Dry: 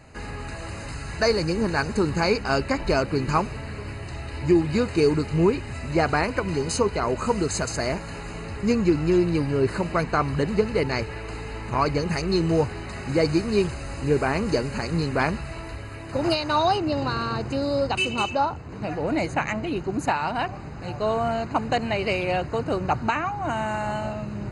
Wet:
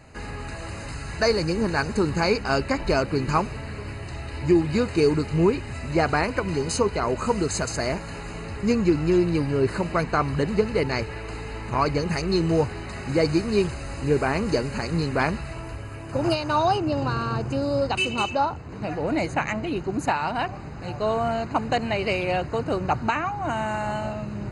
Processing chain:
0:15.53–0:17.82: thirty-one-band graphic EQ 125 Hz +5 dB, 2,000 Hz −5 dB, 4,000 Hz −7 dB

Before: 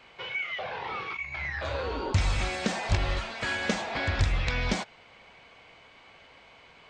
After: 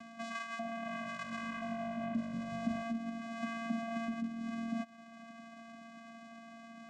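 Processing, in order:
low-pass filter 1,900 Hz 6 dB per octave
upward compression, threshold −49 dBFS
brickwall limiter −24 dBFS, peak gain reduction 10.5 dB
downward compressor, threshold −40 dBFS, peak gain reduction 12 dB
channel vocoder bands 4, square 229 Hz
0:00.67–0:02.83: echo with shifted repeats 183 ms, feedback 46%, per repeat −49 Hz, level −11 dB
level +5.5 dB

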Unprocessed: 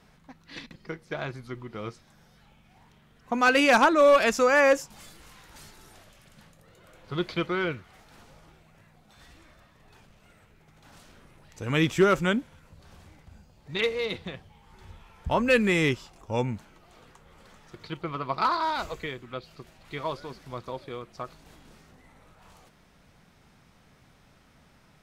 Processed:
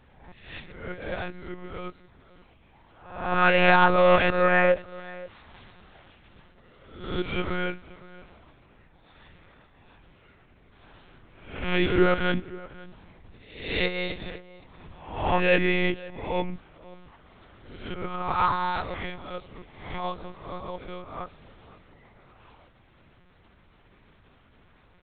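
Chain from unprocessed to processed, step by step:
peak hold with a rise ahead of every peak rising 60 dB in 0.67 s
slap from a distant wall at 90 metres, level −19 dB
one-pitch LPC vocoder at 8 kHz 180 Hz
level −1 dB

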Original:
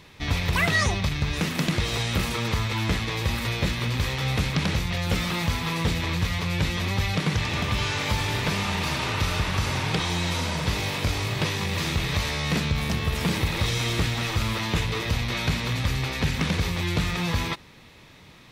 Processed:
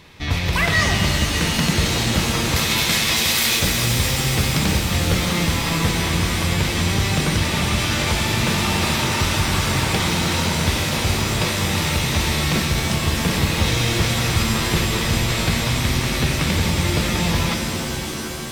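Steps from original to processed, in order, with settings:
0:02.56–0:03.59: spectral tilt +4.5 dB per octave
reverb with rising layers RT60 3.9 s, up +7 semitones, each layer −2 dB, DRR 3 dB
level +3 dB

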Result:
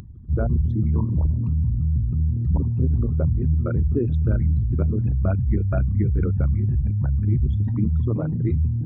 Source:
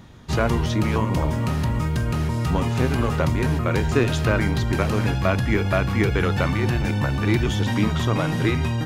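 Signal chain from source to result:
spectral envelope exaggerated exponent 3
parametric band 71 Hz +9 dB 0.97 octaves
upward compression, threshold −27 dBFS
dynamic equaliser 170 Hz, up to +4 dB, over −31 dBFS, Q 0.72
level −6 dB

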